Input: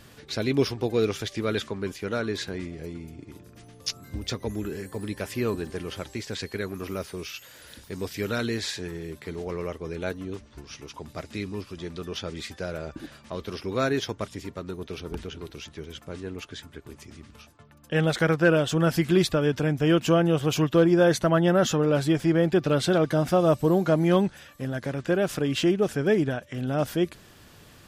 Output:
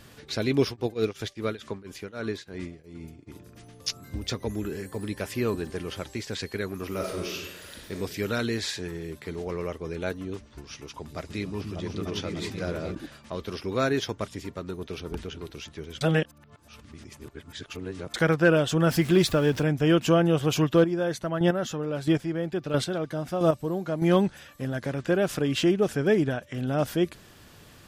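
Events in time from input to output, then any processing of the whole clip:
0.64–3.26 s: tremolo triangle 6.2 Hz -> 2 Hz, depth 95%
6.88–7.92 s: reverb throw, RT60 1.1 s, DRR -1 dB
10.67–12.95 s: delay with an opening low-pass 297 ms, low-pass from 200 Hz, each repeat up 2 oct, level 0 dB
16.01–18.14 s: reverse
18.89–19.63 s: jump at every zero crossing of -36.5 dBFS
20.74–24.02 s: square tremolo 1.5 Hz, depth 60%, duty 15%

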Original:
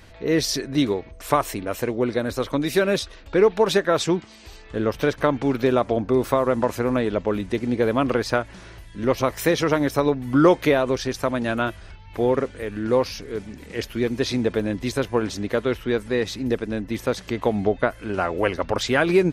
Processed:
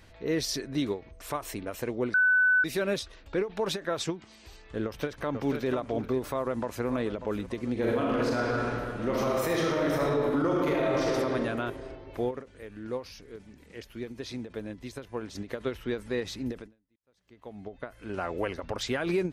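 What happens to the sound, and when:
2.14–2.64 s: bleep 1.5 kHz -9.5 dBFS
4.85–5.70 s: echo throw 490 ms, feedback 15%, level -9 dB
6.30–6.87 s: echo throw 590 ms, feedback 55%, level -16 dB
7.72–11.09 s: reverb throw, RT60 2.3 s, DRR -5 dB
12.31–15.35 s: gain -6.5 dB
16.96–18.24 s: fade in quadratic
whole clip: peak limiter -12 dBFS; endings held to a fixed fall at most 220 dB/s; trim -7 dB

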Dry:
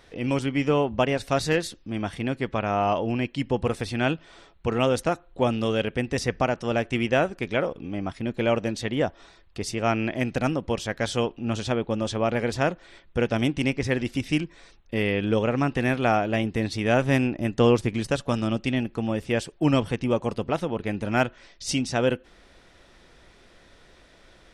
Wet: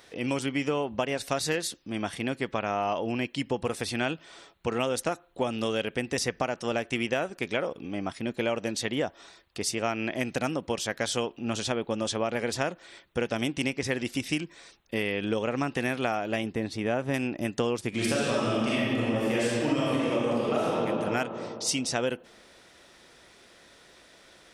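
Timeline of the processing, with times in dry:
16.52–17.14 s: treble shelf 2.2 kHz -11.5 dB
17.89–20.76 s: reverb throw, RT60 2.2 s, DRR -9 dB
whole clip: high-pass 220 Hz 6 dB/octave; treble shelf 5.7 kHz +9 dB; compression, threshold -24 dBFS

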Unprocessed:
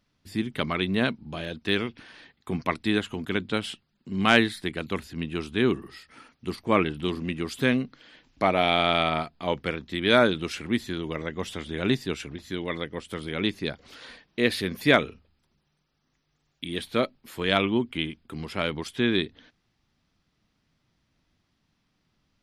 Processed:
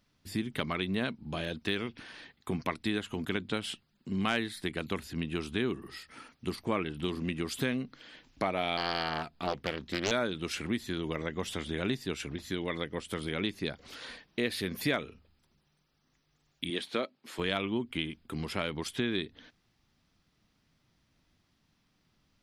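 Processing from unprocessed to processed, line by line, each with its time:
8.77–10.11 s: loudspeaker Doppler distortion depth 0.72 ms
16.70–17.39 s: band-pass 230–7300 Hz
whole clip: treble shelf 7.5 kHz +4.5 dB; compression 3:1, threshold -30 dBFS

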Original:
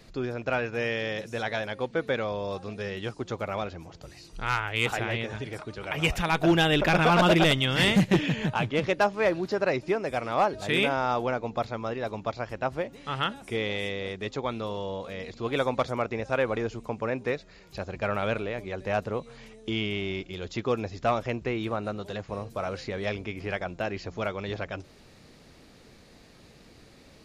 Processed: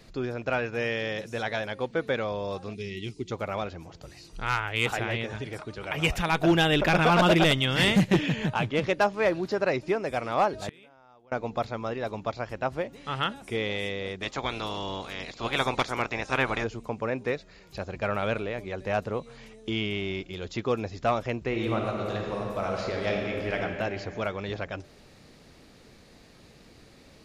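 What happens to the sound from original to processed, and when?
2.74–3.32 s: time-frequency box 440–1900 Hz -19 dB
10.61–11.32 s: inverted gate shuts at -21 dBFS, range -30 dB
14.21–16.63 s: spectral peaks clipped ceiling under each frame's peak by 18 dB
21.47–23.60 s: reverb throw, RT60 2.6 s, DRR 0 dB

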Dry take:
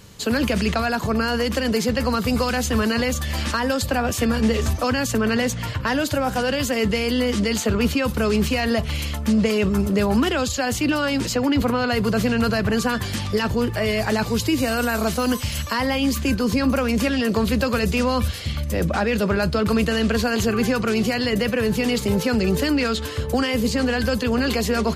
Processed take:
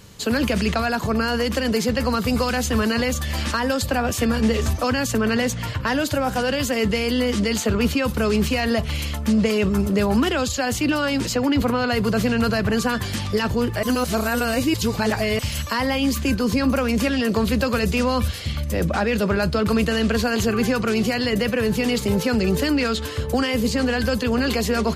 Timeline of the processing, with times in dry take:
13.83–15.39 s: reverse

